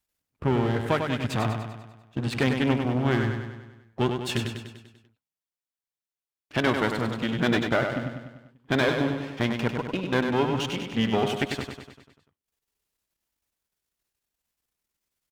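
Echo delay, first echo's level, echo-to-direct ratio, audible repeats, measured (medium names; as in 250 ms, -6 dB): 98 ms, -6.0 dB, -4.5 dB, 6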